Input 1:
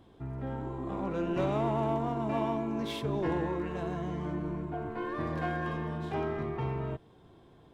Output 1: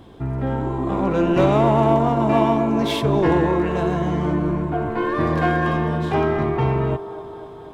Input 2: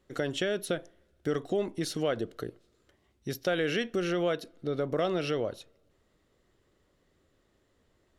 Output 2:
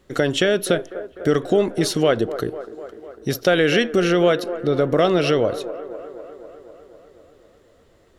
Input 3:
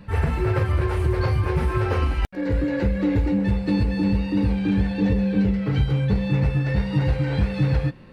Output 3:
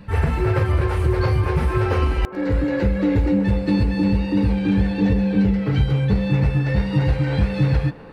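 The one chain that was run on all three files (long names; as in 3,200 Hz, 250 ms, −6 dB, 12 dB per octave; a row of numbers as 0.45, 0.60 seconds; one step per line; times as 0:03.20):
delay with a band-pass on its return 250 ms, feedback 68%, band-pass 670 Hz, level −12 dB
loudness normalisation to −20 LKFS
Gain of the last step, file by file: +13.5, +12.0, +2.5 decibels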